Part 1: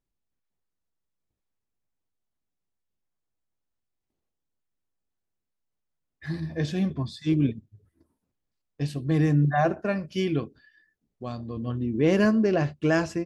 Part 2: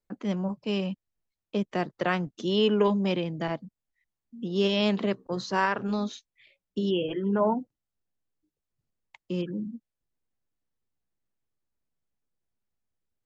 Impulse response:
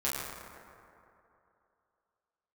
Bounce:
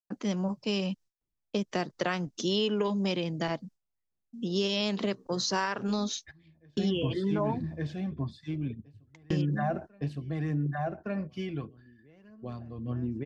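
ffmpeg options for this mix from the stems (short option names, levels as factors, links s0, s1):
-filter_complex "[0:a]lowpass=f=2300:p=1,acrossover=split=220|750[s0][s1][s2];[s0]acompressor=threshold=0.0447:ratio=4[s3];[s1]acompressor=threshold=0.0398:ratio=4[s4];[s2]acompressor=threshold=0.0251:ratio=4[s5];[s3][s4][s5]amix=inputs=3:normalize=0,aphaser=in_gain=1:out_gain=1:delay=1.5:decay=0.38:speed=1.7:type=sinusoidal,adelay=50,volume=0.944,asplit=2[s6][s7];[s7]volume=0.501[s8];[1:a]agate=range=0.0224:threshold=0.00447:ratio=3:detection=peak,equalizer=f=5700:w=1.1:g=11.5,volume=1.06,asplit=2[s9][s10];[s10]apad=whole_len=586679[s11];[s6][s11]sidechaingate=range=0.0282:threshold=0.00316:ratio=16:detection=peak[s12];[s8]aecho=0:1:1163:1[s13];[s12][s9][s13]amix=inputs=3:normalize=0,acompressor=threshold=0.0562:ratio=6"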